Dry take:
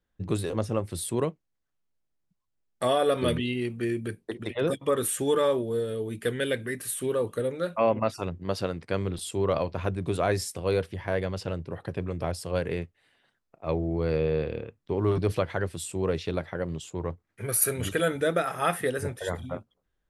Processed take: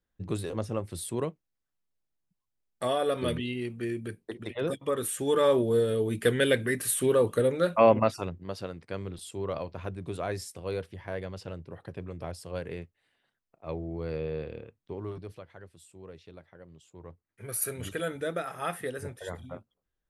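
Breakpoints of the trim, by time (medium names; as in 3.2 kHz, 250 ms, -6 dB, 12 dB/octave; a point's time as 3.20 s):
5.18 s -4 dB
5.62 s +4 dB
7.95 s +4 dB
8.51 s -7.5 dB
14.83 s -7.5 dB
15.40 s -19.5 dB
16.72 s -19.5 dB
17.57 s -7 dB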